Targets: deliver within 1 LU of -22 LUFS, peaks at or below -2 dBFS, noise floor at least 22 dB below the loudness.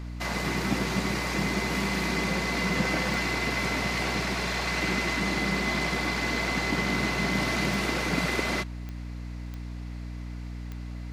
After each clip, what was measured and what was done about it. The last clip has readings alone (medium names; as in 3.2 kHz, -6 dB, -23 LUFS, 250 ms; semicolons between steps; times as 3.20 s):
clicks found 5; hum 60 Hz; highest harmonic 300 Hz; hum level -34 dBFS; loudness -27.0 LUFS; peak level -12.0 dBFS; loudness target -22.0 LUFS
-> de-click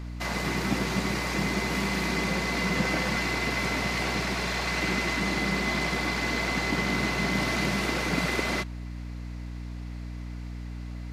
clicks found 0; hum 60 Hz; highest harmonic 300 Hz; hum level -34 dBFS
-> hum notches 60/120/180/240/300 Hz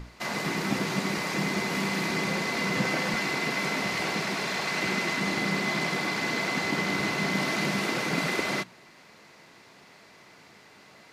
hum not found; loudness -27.5 LUFS; peak level -13.5 dBFS; loudness target -22.0 LUFS
-> trim +5.5 dB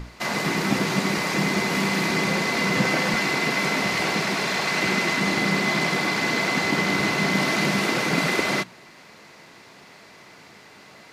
loudness -22.0 LUFS; peak level -8.0 dBFS; noise floor -48 dBFS